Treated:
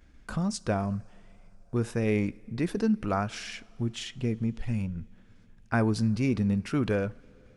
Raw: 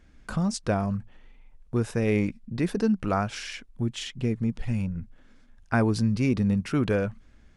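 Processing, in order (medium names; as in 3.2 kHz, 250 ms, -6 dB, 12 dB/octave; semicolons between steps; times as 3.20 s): expander -49 dBFS; two-slope reverb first 0.37 s, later 3.5 s, from -16 dB, DRR 18 dB; upward compressor, threshold -45 dBFS; trim -2.5 dB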